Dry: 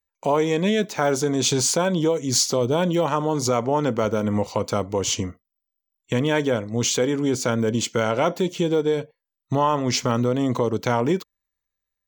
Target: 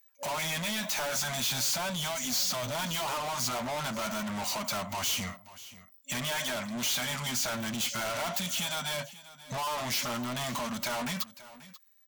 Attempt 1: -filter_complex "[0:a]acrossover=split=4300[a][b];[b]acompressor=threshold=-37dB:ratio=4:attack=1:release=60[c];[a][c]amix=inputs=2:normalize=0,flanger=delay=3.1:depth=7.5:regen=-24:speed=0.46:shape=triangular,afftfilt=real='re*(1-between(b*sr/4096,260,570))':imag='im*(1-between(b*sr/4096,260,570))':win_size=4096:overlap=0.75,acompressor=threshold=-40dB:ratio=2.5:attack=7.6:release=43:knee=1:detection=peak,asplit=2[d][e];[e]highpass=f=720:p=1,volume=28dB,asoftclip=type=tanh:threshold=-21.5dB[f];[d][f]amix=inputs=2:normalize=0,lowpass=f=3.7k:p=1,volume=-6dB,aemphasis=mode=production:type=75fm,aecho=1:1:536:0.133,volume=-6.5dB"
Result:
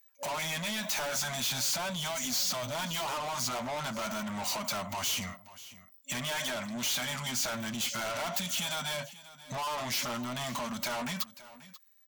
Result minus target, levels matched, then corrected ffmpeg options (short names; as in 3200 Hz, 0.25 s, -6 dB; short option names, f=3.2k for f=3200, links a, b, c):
compressor: peak gain reduction +5.5 dB
-filter_complex "[0:a]acrossover=split=4300[a][b];[b]acompressor=threshold=-37dB:ratio=4:attack=1:release=60[c];[a][c]amix=inputs=2:normalize=0,flanger=delay=3.1:depth=7.5:regen=-24:speed=0.46:shape=triangular,afftfilt=real='re*(1-between(b*sr/4096,260,570))':imag='im*(1-between(b*sr/4096,260,570))':win_size=4096:overlap=0.75,acompressor=threshold=-31dB:ratio=2.5:attack=7.6:release=43:knee=1:detection=peak,asplit=2[d][e];[e]highpass=f=720:p=1,volume=28dB,asoftclip=type=tanh:threshold=-21.5dB[f];[d][f]amix=inputs=2:normalize=0,lowpass=f=3.7k:p=1,volume=-6dB,aemphasis=mode=production:type=75fm,aecho=1:1:536:0.133,volume=-6.5dB"